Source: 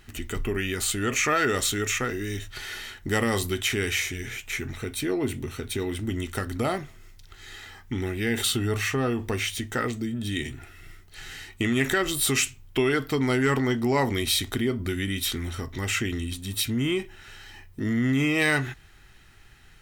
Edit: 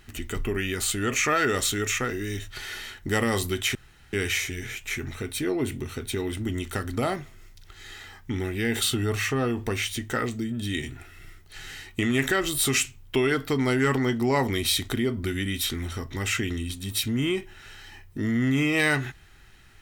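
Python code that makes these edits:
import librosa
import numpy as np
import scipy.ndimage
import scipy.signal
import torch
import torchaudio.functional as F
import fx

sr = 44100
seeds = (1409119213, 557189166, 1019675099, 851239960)

y = fx.edit(x, sr, fx.insert_room_tone(at_s=3.75, length_s=0.38), tone=tone)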